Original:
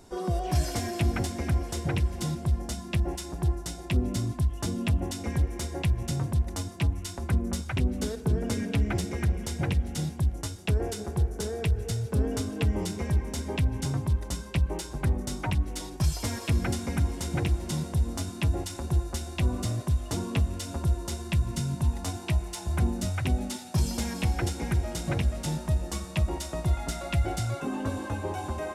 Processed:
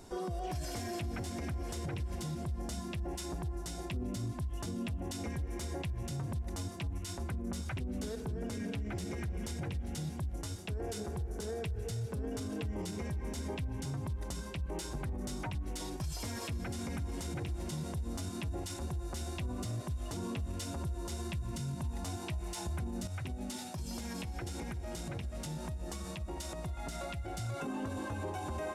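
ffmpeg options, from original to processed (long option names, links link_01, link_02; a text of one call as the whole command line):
ffmpeg -i in.wav -filter_complex "[0:a]asettb=1/sr,asplit=3[link_01][link_02][link_03];[link_01]atrim=end=23.074[link_04];[link_02]atrim=start=23.07:end=27.38,asetpts=PTS-STARTPTS,afade=type=in:duration=0.004:curve=qsin,afade=type=out:start_time=4.306:duration=0.004:curve=qsin,acompressor=threshold=-35dB:ratio=12:attack=3.2:release=140:knee=1:detection=peak[link_05];[link_03]atrim=start=27.376[link_06];[link_04][link_05]acrossfade=duration=0.004:curve1=hsin:curve2=qsin[link_07];[link_07][link_06]acrossfade=duration=0.004:curve1=qsin:curve2=hsin,acompressor=threshold=-27dB:ratio=2,alimiter=level_in=6.5dB:limit=-24dB:level=0:latency=1:release=69,volume=-6.5dB" out.wav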